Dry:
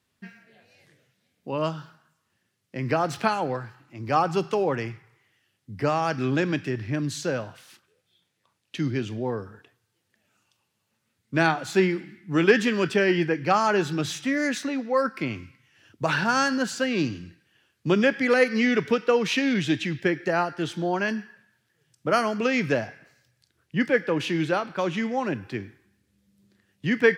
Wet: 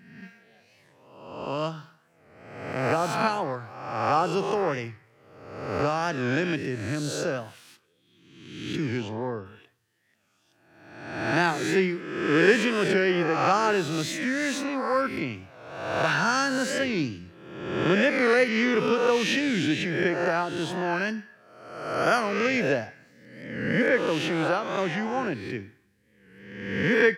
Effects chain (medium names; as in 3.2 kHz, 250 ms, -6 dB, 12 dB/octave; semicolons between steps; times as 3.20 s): reverse spectral sustain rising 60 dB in 1.08 s; 8.97–9.44 s: low-pass 7.8 kHz -> 4.2 kHz 12 dB/octave; warped record 45 rpm, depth 100 cents; trim -3.5 dB